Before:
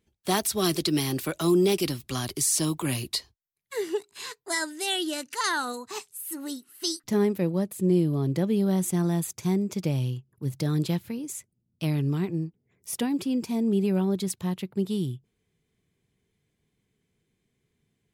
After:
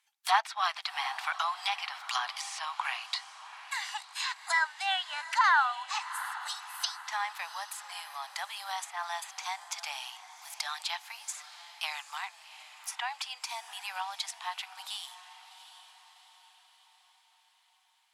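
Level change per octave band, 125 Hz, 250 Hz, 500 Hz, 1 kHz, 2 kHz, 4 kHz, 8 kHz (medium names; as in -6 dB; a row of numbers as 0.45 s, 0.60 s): under -40 dB, under -40 dB, -23.0 dB, +5.0 dB, +4.5 dB, -1.5 dB, -9.5 dB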